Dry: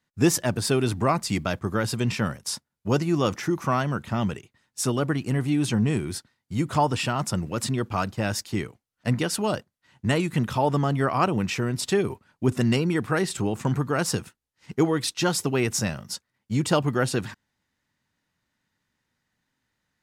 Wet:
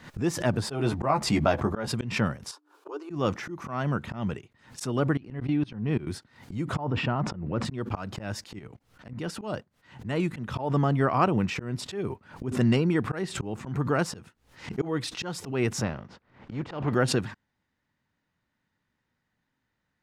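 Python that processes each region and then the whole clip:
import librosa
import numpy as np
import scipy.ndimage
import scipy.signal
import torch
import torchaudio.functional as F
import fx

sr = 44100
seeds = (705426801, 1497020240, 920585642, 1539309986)

y = fx.chain(x, sr, fx.peak_eq(hz=740.0, db=7.0, octaves=1.3),
    fx.doubler(ms=14.0, db=-5.5), at=(0.62, 1.88))
y = fx.chain(y, sr, fx.cheby_ripple_highpass(hz=290.0, ripple_db=9),
    fx.peak_eq(hz=2000.0, db=-12.0, octaves=0.31), at=(2.51, 3.1))
y = fx.chain(y, sr, fx.savgol(points=15),
    fx.level_steps(step_db=24), at=(5.17, 6.07))
y = fx.chain(y, sr, fx.spacing_loss(db_at_10k=31),
    fx.sustainer(db_per_s=44.0), at=(6.76, 7.65))
y = fx.chain(y, sr, fx.low_shelf(hz=240.0, db=3.5),
    fx.level_steps(step_db=19),
    fx.transient(attack_db=-8, sustain_db=9), at=(8.59, 9.41))
y = fx.spec_flatten(y, sr, power=0.63, at=(15.8, 16.93), fade=0.02)
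y = fx.spacing_loss(y, sr, db_at_10k=32, at=(15.8, 16.93), fade=0.02)
y = fx.lowpass(y, sr, hz=2300.0, slope=6)
y = fx.auto_swell(y, sr, attack_ms=202.0)
y = fx.pre_swell(y, sr, db_per_s=120.0)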